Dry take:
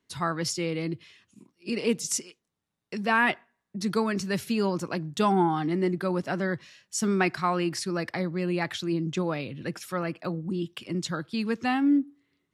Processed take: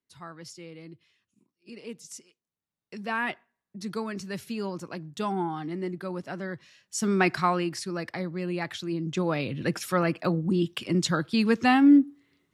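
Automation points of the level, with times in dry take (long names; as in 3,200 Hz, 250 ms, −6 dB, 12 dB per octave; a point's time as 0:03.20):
0:02.18 −14.5 dB
0:02.98 −6.5 dB
0:06.54 −6.5 dB
0:07.39 +3.5 dB
0:07.72 −3 dB
0:08.96 −3 dB
0:09.53 +5.5 dB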